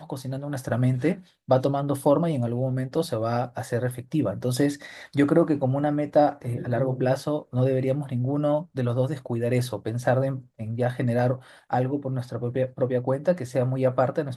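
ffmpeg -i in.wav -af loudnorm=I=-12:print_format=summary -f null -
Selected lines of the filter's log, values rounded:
Input Integrated:    -25.7 LUFS
Input True Peak:      -6.9 dBTP
Input LRA:             2.2 LU
Input Threshold:     -35.7 LUFS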